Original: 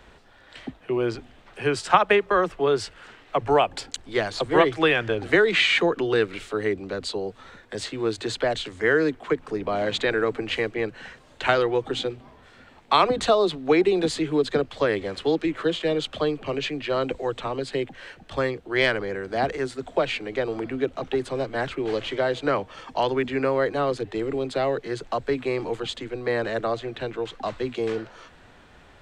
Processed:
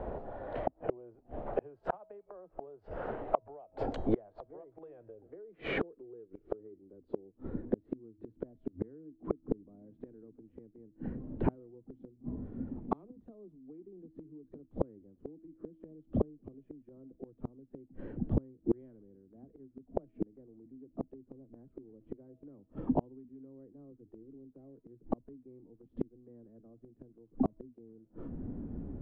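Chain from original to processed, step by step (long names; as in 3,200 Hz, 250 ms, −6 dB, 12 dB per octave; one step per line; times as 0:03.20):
low-pass filter sweep 640 Hz → 260 Hz, 0:04.40–0:08.10
downward compressor 8 to 1, threshold −21 dBFS, peak gain reduction 13.5 dB
hum removal 321.3 Hz, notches 33
gate with flip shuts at −27 dBFS, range −37 dB
level +11 dB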